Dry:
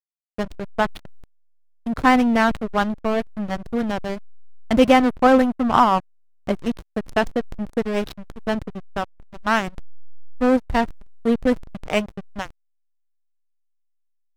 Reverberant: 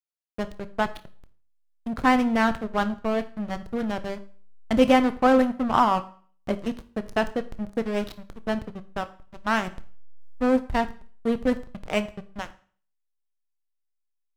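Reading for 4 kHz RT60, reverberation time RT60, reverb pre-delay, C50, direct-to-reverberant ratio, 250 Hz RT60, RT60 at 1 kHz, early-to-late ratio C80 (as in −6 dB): 0.45 s, 0.45 s, 20 ms, 16.5 dB, 11.5 dB, 0.50 s, 0.45 s, 20.5 dB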